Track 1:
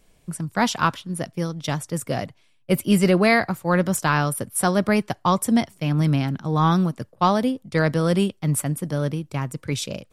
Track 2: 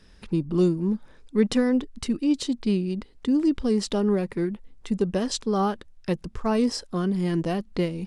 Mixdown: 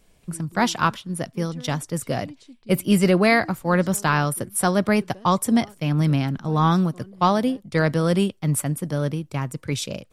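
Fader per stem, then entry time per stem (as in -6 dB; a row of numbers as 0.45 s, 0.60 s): 0.0 dB, -20.0 dB; 0.00 s, 0.00 s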